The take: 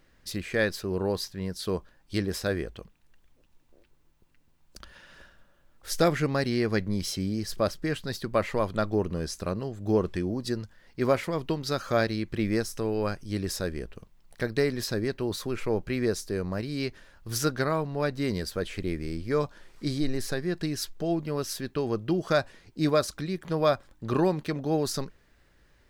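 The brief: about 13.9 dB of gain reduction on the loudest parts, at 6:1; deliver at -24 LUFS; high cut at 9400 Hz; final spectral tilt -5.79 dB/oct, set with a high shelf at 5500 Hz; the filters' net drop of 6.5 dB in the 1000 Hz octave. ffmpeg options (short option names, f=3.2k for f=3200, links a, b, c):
-af "lowpass=9.4k,equalizer=f=1k:t=o:g=-9,highshelf=f=5.5k:g=-8,acompressor=threshold=-36dB:ratio=6,volume=17dB"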